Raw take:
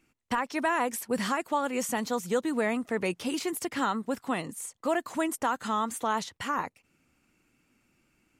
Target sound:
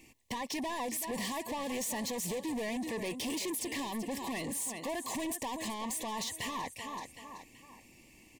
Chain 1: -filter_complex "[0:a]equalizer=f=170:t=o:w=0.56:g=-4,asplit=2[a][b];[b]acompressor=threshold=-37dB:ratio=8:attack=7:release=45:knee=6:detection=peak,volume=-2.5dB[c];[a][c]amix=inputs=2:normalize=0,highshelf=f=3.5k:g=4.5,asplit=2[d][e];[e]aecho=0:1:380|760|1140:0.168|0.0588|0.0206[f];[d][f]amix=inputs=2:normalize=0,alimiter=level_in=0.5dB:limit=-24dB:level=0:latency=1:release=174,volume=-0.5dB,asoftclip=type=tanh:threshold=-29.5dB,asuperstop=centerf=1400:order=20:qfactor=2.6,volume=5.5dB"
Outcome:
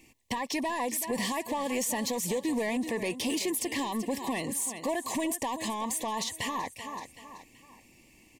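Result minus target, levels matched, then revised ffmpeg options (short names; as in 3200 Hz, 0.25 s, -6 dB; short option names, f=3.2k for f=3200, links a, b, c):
soft clip: distortion -9 dB
-filter_complex "[0:a]equalizer=f=170:t=o:w=0.56:g=-4,asplit=2[a][b];[b]acompressor=threshold=-37dB:ratio=8:attack=7:release=45:knee=6:detection=peak,volume=-2.5dB[c];[a][c]amix=inputs=2:normalize=0,highshelf=f=3.5k:g=4.5,asplit=2[d][e];[e]aecho=0:1:380|760|1140:0.168|0.0588|0.0206[f];[d][f]amix=inputs=2:normalize=0,alimiter=level_in=0.5dB:limit=-24dB:level=0:latency=1:release=174,volume=-0.5dB,asoftclip=type=tanh:threshold=-39dB,asuperstop=centerf=1400:order=20:qfactor=2.6,volume=5.5dB"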